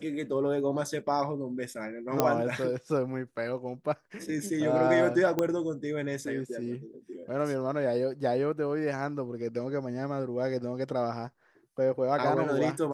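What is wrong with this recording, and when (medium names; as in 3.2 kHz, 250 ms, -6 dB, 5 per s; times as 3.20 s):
2.20 s: pop -9 dBFS
5.39 s: pop -14 dBFS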